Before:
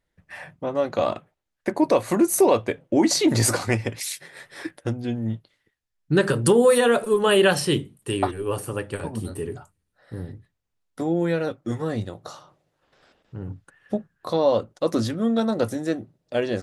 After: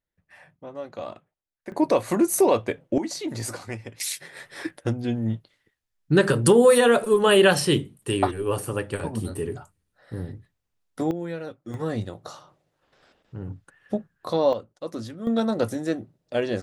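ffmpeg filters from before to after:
ffmpeg -i in.wav -af "asetnsamples=nb_out_samples=441:pad=0,asendcmd='1.72 volume volume -1.5dB;2.98 volume volume -11.5dB;4 volume volume 1dB;11.11 volume volume -9dB;11.74 volume volume -1dB;14.53 volume volume -10.5dB;15.27 volume volume -1dB',volume=-12dB" out.wav

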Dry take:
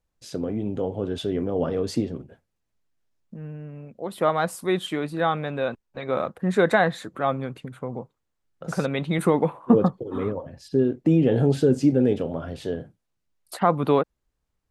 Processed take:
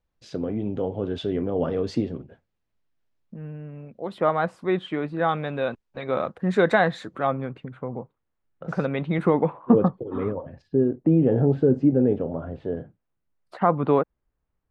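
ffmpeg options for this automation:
ffmpeg -i in.wav -af "asetnsamples=nb_out_samples=441:pad=0,asendcmd='4.18 lowpass f 2400;5.29 lowpass f 5700;7.27 lowpass f 2400;10.62 lowpass f 1200;12.77 lowpass f 2000',lowpass=4200" out.wav

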